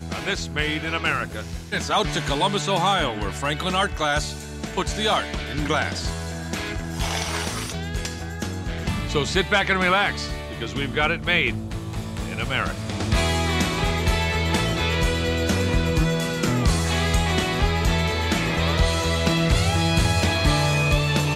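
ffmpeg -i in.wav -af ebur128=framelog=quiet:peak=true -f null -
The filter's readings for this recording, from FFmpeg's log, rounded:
Integrated loudness:
  I:         -22.9 LUFS
  Threshold: -32.9 LUFS
Loudness range:
  LRA:         4.6 LU
  Threshold: -43.1 LUFS
  LRA low:   -25.8 LUFS
  LRA high:  -21.2 LUFS
True peak:
  Peak:       -6.1 dBFS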